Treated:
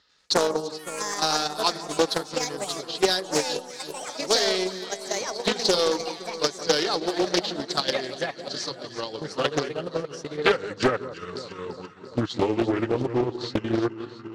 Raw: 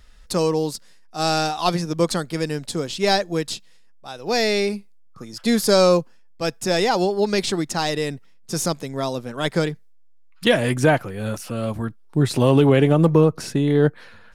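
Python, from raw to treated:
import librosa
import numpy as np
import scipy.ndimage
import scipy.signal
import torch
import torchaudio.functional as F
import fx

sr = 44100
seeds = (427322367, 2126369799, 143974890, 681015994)

p1 = fx.pitch_glide(x, sr, semitones=-4.5, runs='starting unshifted')
p2 = fx.low_shelf(p1, sr, hz=290.0, db=-6.5)
p3 = fx.level_steps(p2, sr, step_db=24)
p4 = p2 + (p3 * 10.0 ** (0.0 / 20.0))
p5 = fx.cabinet(p4, sr, low_hz=170.0, low_slope=12, high_hz=5800.0, hz=(220.0, 660.0, 2300.0, 4200.0), db=(-8, -8, -7, 8))
p6 = 10.0 ** (-8.5 / 20.0) * np.tanh(p5 / 10.0 ** (-8.5 / 20.0))
p7 = fx.echo_pitch(p6, sr, ms=93, semitones=5, count=3, db_per_echo=-6.0)
p8 = p7 + fx.echo_alternate(p7, sr, ms=171, hz=1200.0, feedback_pct=79, wet_db=-9, dry=0)
p9 = fx.transient(p8, sr, attack_db=10, sustain_db=-4)
p10 = fx.doppler_dist(p9, sr, depth_ms=0.7)
y = p10 * 10.0 ** (-6.5 / 20.0)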